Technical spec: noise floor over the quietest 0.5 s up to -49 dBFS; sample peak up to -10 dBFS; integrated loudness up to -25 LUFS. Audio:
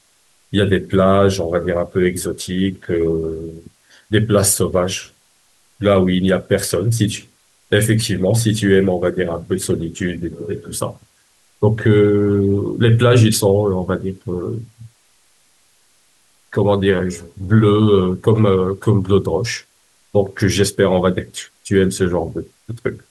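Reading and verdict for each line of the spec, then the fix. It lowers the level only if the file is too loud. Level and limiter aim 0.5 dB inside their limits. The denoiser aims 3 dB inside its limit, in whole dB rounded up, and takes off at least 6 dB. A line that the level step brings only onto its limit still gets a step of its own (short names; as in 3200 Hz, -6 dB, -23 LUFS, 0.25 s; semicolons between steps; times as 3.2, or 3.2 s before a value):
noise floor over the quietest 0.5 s -57 dBFS: OK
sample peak -2.5 dBFS: fail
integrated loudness -17.0 LUFS: fail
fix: gain -8.5 dB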